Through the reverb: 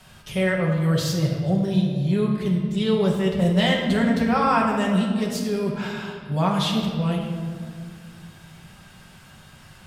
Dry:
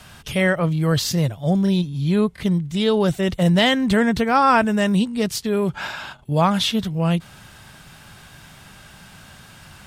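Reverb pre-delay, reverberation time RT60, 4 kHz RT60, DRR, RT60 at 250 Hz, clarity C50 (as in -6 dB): 5 ms, 2.1 s, 1.2 s, -2.0 dB, 2.9 s, 3.0 dB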